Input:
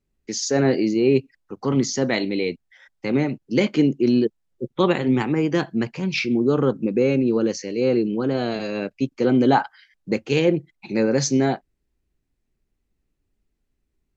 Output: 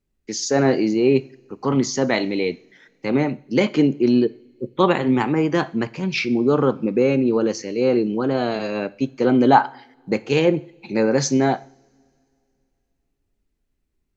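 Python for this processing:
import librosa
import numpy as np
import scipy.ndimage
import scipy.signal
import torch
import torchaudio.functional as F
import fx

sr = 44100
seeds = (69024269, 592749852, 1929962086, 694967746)

y = fx.rev_double_slope(x, sr, seeds[0], early_s=0.51, late_s=2.7, knee_db=-22, drr_db=15.5)
y = fx.dynamic_eq(y, sr, hz=930.0, q=0.97, threshold_db=-36.0, ratio=4.0, max_db=6)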